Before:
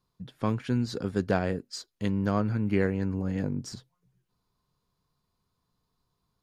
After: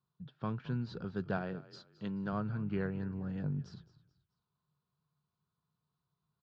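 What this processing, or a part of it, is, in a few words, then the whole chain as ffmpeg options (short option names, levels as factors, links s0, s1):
frequency-shifting delay pedal into a guitar cabinet: -filter_complex "[0:a]asplit=4[s0][s1][s2][s3];[s1]adelay=216,afreqshift=-63,volume=0.133[s4];[s2]adelay=432,afreqshift=-126,volume=0.0479[s5];[s3]adelay=648,afreqshift=-189,volume=0.0174[s6];[s0][s4][s5][s6]amix=inputs=4:normalize=0,highpass=84,equalizer=f=150:t=q:w=4:g=10,equalizer=f=280:t=q:w=4:g=-6,equalizer=f=510:t=q:w=4:g=-4,equalizer=f=1400:t=q:w=4:g=5,equalizer=f=2100:t=q:w=4:g=-9,lowpass=f=4200:w=0.5412,lowpass=f=4200:w=1.3066,asettb=1/sr,asplit=3[s7][s8][s9];[s7]atrim=end=1.374[s10];[s8]atrim=start=1.37:end=2.33,asetpts=PTS-STARTPTS,afade=t=in:d=0.004:c=qsin,afade=t=out:st=0.956:d=0.004:c=qsin,highpass=140[s11];[s9]atrim=start=2.326[s12];[s10][s11]acrossfade=d=0.004:c1=hsin:c2=qsin[s13];[s13][s12]acrossfade=d=0.004:c1=qsin:c2=hsin,volume=0.355"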